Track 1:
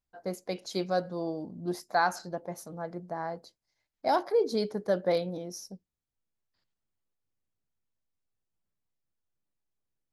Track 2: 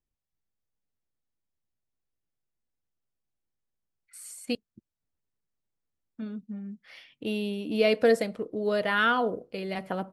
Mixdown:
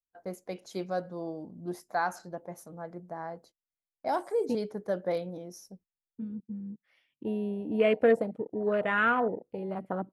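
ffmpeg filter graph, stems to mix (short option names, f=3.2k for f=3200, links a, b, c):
-filter_complex "[0:a]agate=range=-23dB:threshold=-52dB:ratio=16:detection=peak,volume=-3.5dB[a];[1:a]afwtdn=0.0251,volume=-1dB[b];[a][b]amix=inputs=2:normalize=0,equalizer=f=4.5k:t=o:w=0.8:g=-7.5"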